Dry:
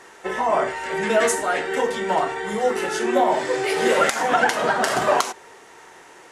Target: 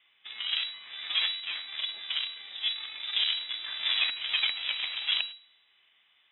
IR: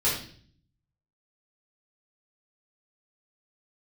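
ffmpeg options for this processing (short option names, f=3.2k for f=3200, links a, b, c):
-filter_complex "[0:a]aeval=exprs='0.631*(cos(1*acos(clip(val(0)/0.631,-1,1)))-cos(1*PI/2))+0.178*(cos(2*acos(clip(val(0)/0.631,-1,1)))-cos(2*PI/2))+0.0224*(cos(3*acos(clip(val(0)/0.631,-1,1)))-cos(3*PI/2))+0.158*(cos(4*acos(clip(val(0)/0.631,-1,1)))-cos(4*PI/2))+0.0562*(cos(7*acos(clip(val(0)/0.631,-1,1)))-cos(7*PI/2))':c=same,acrossover=split=2700[a][b];[b]acompressor=threshold=-43dB:ratio=4:attack=1:release=60[c];[a][c]amix=inputs=2:normalize=0,asplit=2[d][e];[1:a]atrim=start_sample=2205[f];[e][f]afir=irnorm=-1:irlink=0,volume=-28dB[g];[d][g]amix=inputs=2:normalize=0,lowpass=f=3.3k:t=q:w=0.5098,lowpass=f=3.3k:t=q:w=0.6013,lowpass=f=3.3k:t=q:w=0.9,lowpass=f=3.3k:t=q:w=2.563,afreqshift=-3900,volume=-9dB"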